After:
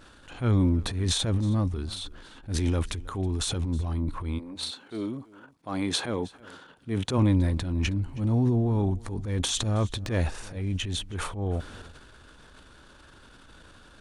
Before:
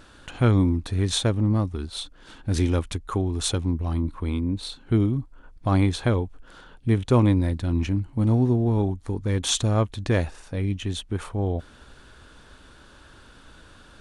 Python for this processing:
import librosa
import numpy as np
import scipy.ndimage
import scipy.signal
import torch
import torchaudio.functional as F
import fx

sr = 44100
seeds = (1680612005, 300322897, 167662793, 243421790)

y = fx.transient(x, sr, attack_db=-9, sustain_db=9)
y = fx.highpass(y, sr, hz=fx.line((4.38, 470.0), (7.17, 120.0)), slope=12, at=(4.38, 7.17), fade=0.02)
y = y + 10.0 ** (-22.0 / 20.0) * np.pad(y, (int(319 * sr / 1000.0), 0))[:len(y)]
y = y * 10.0 ** (-3.0 / 20.0)